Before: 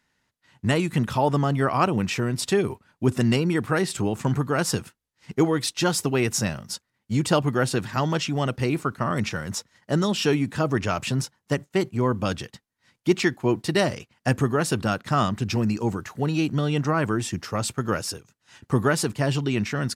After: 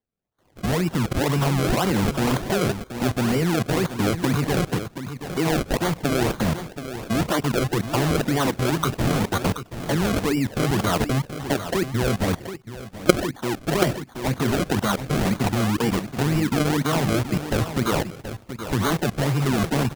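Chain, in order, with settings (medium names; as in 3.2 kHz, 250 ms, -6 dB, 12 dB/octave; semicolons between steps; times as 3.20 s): delay that grows with frequency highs early, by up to 124 ms; flange 0.96 Hz, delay 2.8 ms, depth 3.5 ms, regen -64%; dynamic bell 1 kHz, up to +4 dB, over -51 dBFS, Q 6.1; level held to a coarse grid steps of 18 dB; decimation with a swept rate 33×, swing 100% 2 Hz; on a send: delay 728 ms -10.5 dB; on the sum: level rider gain up to 15 dB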